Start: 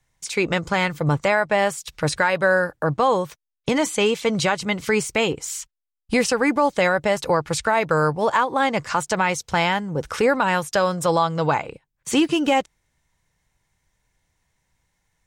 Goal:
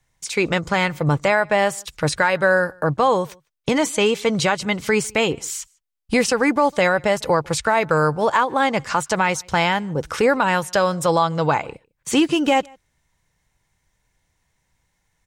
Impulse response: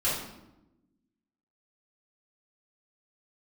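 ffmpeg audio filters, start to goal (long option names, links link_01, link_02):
-filter_complex "[0:a]asplit=2[link_01][link_02];[link_02]adelay=151.6,volume=-28dB,highshelf=frequency=4000:gain=-3.41[link_03];[link_01][link_03]amix=inputs=2:normalize=0,volume=1.5dB"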